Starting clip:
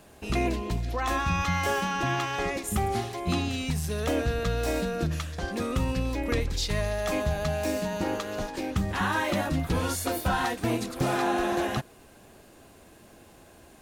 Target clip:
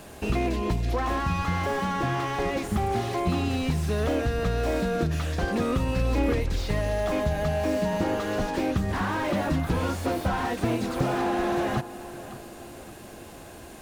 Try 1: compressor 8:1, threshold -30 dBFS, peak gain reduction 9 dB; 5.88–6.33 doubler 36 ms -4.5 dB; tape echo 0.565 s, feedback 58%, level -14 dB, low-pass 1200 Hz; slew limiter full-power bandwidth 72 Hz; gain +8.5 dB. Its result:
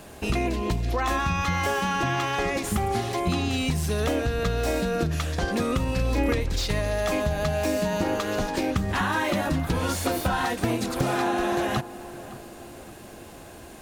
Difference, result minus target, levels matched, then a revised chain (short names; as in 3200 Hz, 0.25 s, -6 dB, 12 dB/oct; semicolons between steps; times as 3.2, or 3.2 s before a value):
slew limiter: distortion -12 dB
compressor 8:1, threshold -30 dBFS, peak gain reduction 9 dB; 5.88–6.33 doubler 36 ms -4.5 dB; tape echo 0.565 s, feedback 58%, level -14 dB, low-pass 1200 Hz; slew limiter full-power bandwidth 19 Hz; gain +8.5 dB